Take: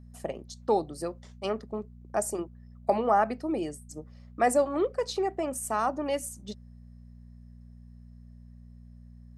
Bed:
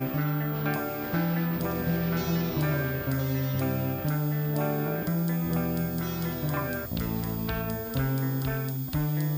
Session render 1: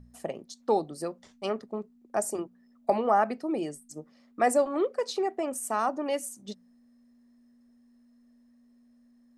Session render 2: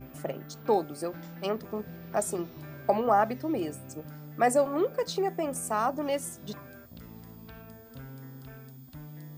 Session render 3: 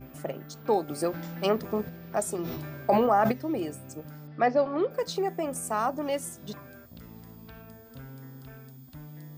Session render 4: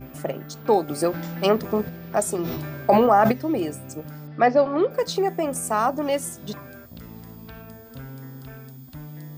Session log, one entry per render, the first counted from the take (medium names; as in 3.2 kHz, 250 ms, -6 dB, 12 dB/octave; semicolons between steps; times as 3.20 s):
de-hum 60 Hz, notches 3
add bed -17 dB
0.88–1.89 s: gain +5.5 dB; 2.41–3.32 s: decay stretcher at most 24 dB/s; 4.27–4.91 s: steep low-pass 5.3 kHz 72 dB/octave
trim +6 dB